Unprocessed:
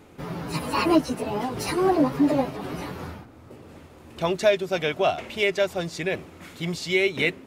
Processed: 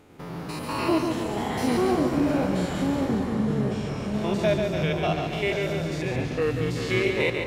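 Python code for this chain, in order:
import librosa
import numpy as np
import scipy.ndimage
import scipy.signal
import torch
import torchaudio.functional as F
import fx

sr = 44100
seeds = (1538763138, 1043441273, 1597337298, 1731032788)

y = fx.spec_steps(x, sr, hold_ms=100)
y = fx.echo_feedback(y, sr, ms=142, feedback_pct=54, wet_db=-5.5)
y = fx.echo_pitch(y, sr, ms=453, semitones=-5, count=3, db_per_echo=-3.0)
y = y * librosa.db_to_amplitude(-2.0)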